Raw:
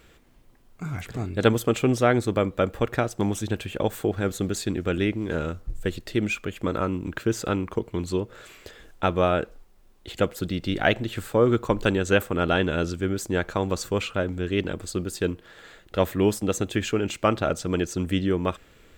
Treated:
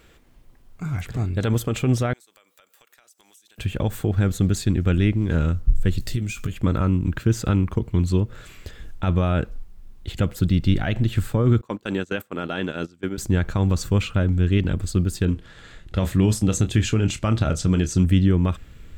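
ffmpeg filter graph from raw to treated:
ffmpeg -i in.wav -filter_complex "[0:a]asettb=1/sr,asplit=3[link_01][link_02][link_03];[link_01]atrim=end=2.134[link_04];[link_02]atrim=start=2.13:end=3.58,asetpts=PTS-STARTPTS,afade=type=in:duration=0.004:curve=qsin,afade=type=out:start_time=1.446:duration=0.004:curve=qsin,highpass=350,aderivative,acompressor=threshold=-52dB:ratio=8:attack=3.2:release=140:knee=1:detection=peak[link_05];[link_03]atrim=start=3.576[link_06];[link_04][link_05]acrossfade=duration=0.004:curve1=hsin:curve2=qsin[link_07];[link_07][link_06]acrossfade=duration=0.004:curve1=qsin:curve2=hsin,asettb=1/sr,asplit=3[link_08][link_09][link_10];[link_08]atrim=end=5.984[link_11];[link_09]atrim=start=5.98:end=6.52,asetpts=PTS-STARTPTS,afade=type=in:duration=0.004:curve=qsin,afade=type=out:start_time=0.536:duration=0.004:curve=qsin,bass=frequency=250:gain=3,treble=frequency=4000:gain=12,acompressor=threshold=-29dB:ratio=12:attack=3.2:release=140:knee=1:detection=peak,asplit=2[link_12][link_13];[link_13]adelay=17,volume=-9dB[link_14];[link_12][link_14]amix=inputs=2:normalize=0,atrim=end_sample=23814[link_15];[link_10]atrim=start=6.516[link_16];[link_11][link_15]acrossfade=duration=0.004:curve1=hsin:curve2=qsin[link_17];[link_17][link_16]acrossfade=duration=0.004:curve1=qsin:curve2=hsin,asettb=1/sr,asplit=3[link_18][link_19][link_20];[link_18]atrim=end=11.614[link_21];[link_19]atrim=start=11.61:end=13.18,asetpts=PTS-STARTPTS,afade=type=in:duration=0.004:curve=qsin,afade=type=out:start_time=1.566:duration=0.004:curve=qsin,agate=range=-21dB:threshold=-26dB:ratio=16:release=100:detection=peak,highpass=270[link_22];[link_20]atrim=start=13.176[link_23];[link_21][link_22]acrossfade=duration=0.004:curve1=hsin:curve2=qsin[link_24];[link_24][link_23]acrossfade=duration=0.004:curve1=qsin:curve2=hsin,asettb=1/sr,asplit=3[link_25][link_26][link_27];[link_25]atrim=end=15.254[link_28];[link_26]atrim=start=15.25:end=18.04,asetpts=PTS-STARTPTS,afade=type=in:duration=0.004:curve=qsin,afade=type=out:start_time=2.786:duration=0.004:curve=qsin,lowpass=10000,asplit=2[link_29][link_30];[link_30]adelay=27,volume=-11.5dB[link_31];[link_29][link_31]amix=inputs=2:normalize=0,atrim=end_sample=123039,adynamicequalizer=threshold=0.00708:dfrequency=3500:dqfactor=0.7:tfrequency=3500:tqfactor=0.7:attack=5:release=100:ratio=0.375:range=2.5:mode=boostabove:tftype=highshelf[link_32];[link_27]atrim=start=18.036[link_33];[link_28][link_32]acrossfade=duration=0.004:curve1=hsin:curve2=qsin[link_34];[link_34][link_33]acrossfade=duration=0.004:curve1=qsin:curve2=hsin,alimiter=limit=-15dB:level=0:latency=1:release=50,asubboost=boost=5:cutoff=190,volume=1dB" out.wav

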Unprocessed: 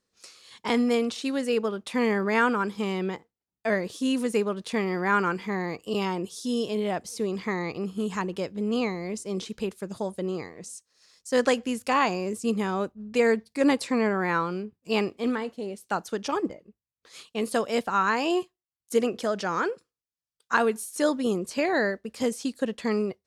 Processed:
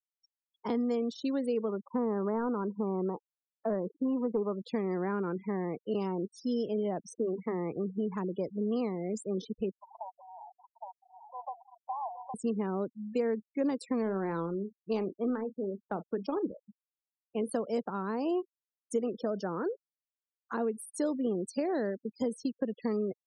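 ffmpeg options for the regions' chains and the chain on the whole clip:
ffmpeg -i in.wav -filter_complex "[0:a]asettb=1/sr,asplit=3[link_01][link_02][link_03];[link_01]atrim=end=1.694[link_04];[link_02]atrim=start=1.69:end=4.62,asetpts=PTS-STARTPTS,afade=type=in:duration=0.004:curve=qsin,afade=type=out:start_time=2.926:duration=0.004:curve=qsin,aeval=exprs='clip(val(0),-1,0.1)':channel_layout=same,lowpass=frequency=1100:width_type=q:width=1.9[link_05];[link_03]atrim=start=4.616[link_06];[link_04][link_05]acrossfade=duration=0.004:curve1=hsin:curve2=qsin[link_07];[link_07][link_06]acrossfade=duration=0.004:curve1=qsin:curve2=hsin,asettb=1/sr,asplit=3[link_08][link_09][link_10];[link_08]atrim=end=7.134[link_11];[link_09]atrim=start=7.13:end=7.71,asetpts=PTS-STARTPTS,afade=type=in:duration=0.004:curve=qsin,afade=type=out:start_time=0.576:duration=0.004:curve=qsin,aemphasis=mode=reproduction:type=75fm,bandreject=frequency=200:width=6.6[link_12];[link_10]atrim=start=7.706[link_13];[link_11][link_12]acrossfade=duration=0.004:curve1=hsin:curve2=qsin[link_14];[link_14][link_13]acrossfade=duration=0.004:curve1=qsin:curve2=hsin,asettb=1/sr,asplit=3[link_15][link_16][link_17];[link_15]atrim=end=9.794[link_18];[link_16]atrim=start=9.79:end=12.34,asetpts=PTS-STARTPTS,afade=type=in:duration=0.004:curve=qsin,afade=type=out:start_time=2.546:duration=0.004:curve=qsin,aeval=exprs='val(0)+0.5*0.0251*sgn(val(0))':channel_layout=same,asuperpass=centerf=840:order=8:qfactor=2.3,aecho=1:1:814:0.631,atrim=end_sample=112455[link_19];[link_17]atrim=start=12.336[link_20];[link_18][link_19]acrossfade=duration=0.004:curve1=hsin:curve2=qsin[link_21];[link_21][link_20]acrossfade=duration=0.004:curve1=qsin:curve2=hsin,asettb=1/sr,asplit=3[link_22][link_23][link_24];[link_22]atrim=end=14.024[link_25];[link_23]atrim=start=14.02:end=17.23,asetpts=PTS-STARTPTS,afade=type=in:duration=0.004:curve=qsin,afade=type=out:start_time=3.206:duration=0.004:curve=qsin,acrusher=bits=9:mode=log:mix=0:aa=0.000001,adynamicsmooth=sensitivity=6.5:basefreq=610,asplit=2[link_26][link_27];[link_27]adelay=36,volume=-13.5dB[link_28];[link_26][link_28]amix=inputs=2:normalize=0,atrim=end_sample=141561[link_29];[link_24]atrim=start=17.226[link_30];[link_25][link_29]acrossfade=duration=0.004:curve1=hsin:curve2=qsin[link_31];[link_31][link_30]acrossfade=duration=0.004:curve1=qsin:curve2=hsin,afftfilt=real='re*gte(hypot(re,im),0.0251)':imag='im*gte(hypot(re,im),0.0251)':win_size=1024:overlap=0.75,equalizer=frequency=2500:width_type=o:width=1.4:gain=-11,acrossover=split=160|560[link_32][link_33][link_34];[link_32]acompressor=threshold=-51dB:ratio=4[link_35];[link_33]acompressor=threshold=-30dB:ratio=4[link_36];[link_34]acompressor=threshold=-41dB:ratio=4[link_37];[link_35][link_36][link_37]amix=inputs=3:normalize=0" out.wav

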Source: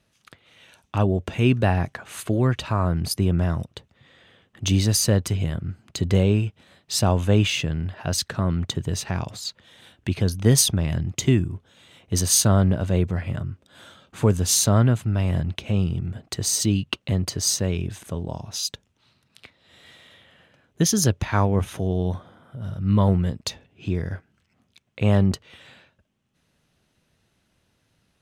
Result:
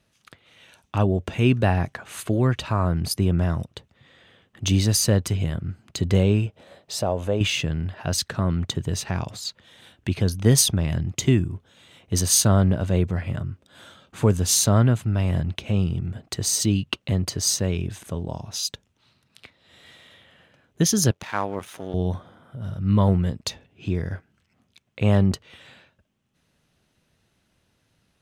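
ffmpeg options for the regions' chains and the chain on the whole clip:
ffmpeg -i in.wav -filter_complex "[0:a]asettb=1/sr,asplit=3[link_01][link_02][link_03];[link_01]atrim=end=6.464[link_04];[link_02]atrim=start=6.46:end=7.41,asetpts=PTS-STARTPTS,afade=type=in:duration=0.004:curve=qsin,afade=type=out:start_time=0.946:duration=0.004:curve=qsin,equalizer=frequency=570:width=1.2:gain=13,acompressor=threshold=-37dB:ratio=1.5:attack=3.2:release=140:knee=1:detection=peak[link_05];[link_03]atrim=start=7.406[link_06];[link_04][link_05]acrossfade=duration=0.004:curve1=hsin:curve2=qsin[link_07];[link_07][link_06]acrossfade=duration=0.004:curve1=qsin:curve2=hsin,asettb=1/sr,asplit=3[link_08][link_09][link_10];[link_08]atrim=end=21.114[link_11];[link_09]atrim=start=21.11:end=21.94,asetpts=PTS-STARTPTS,afade=type=in:duration=0.004:curve=qsin,afade=type=out:start_time=0.826:duration=0.004:curve=qsin,aeval=exprs='if(lt(val(0),0),0.251*val(0),val(0))':channel_layout=same,highpass=frequency=580:poles=1[link_12];[link_10]atrim=start=21.936[link_13];[link_11][link_12]acrossfade=duration=0.004:curve1=hsin:curve2=qsin[link_14];[link_14][link_13]acrossfade=duration=0.004:curve1=qsin:curve2=hsin" out.wav

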